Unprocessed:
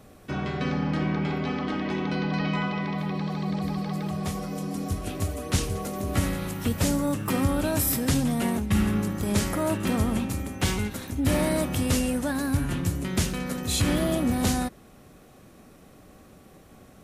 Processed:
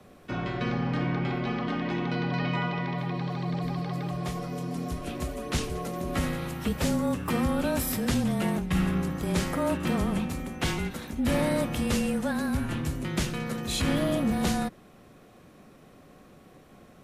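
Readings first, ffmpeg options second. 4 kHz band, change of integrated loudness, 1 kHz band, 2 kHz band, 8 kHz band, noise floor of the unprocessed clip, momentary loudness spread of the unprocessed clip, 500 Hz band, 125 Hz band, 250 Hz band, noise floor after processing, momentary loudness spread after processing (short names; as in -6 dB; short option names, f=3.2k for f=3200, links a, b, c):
-2.0 dB, -2.0 dB, -0.5 dB, -0.5 dB, -6.0 dB, -52 dBFS, 7 LU, -1.0 dB, -2.5 dB, -2.0 dB, -54 dBFS, 7 LU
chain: -filter_complex "[0:a]acrossover=split=150|4700[a][b][c];[b]acontrast=67[d];[a][d][c]amix=inputs=3:normalize=0,afreqshift=-25,volume=-7dB"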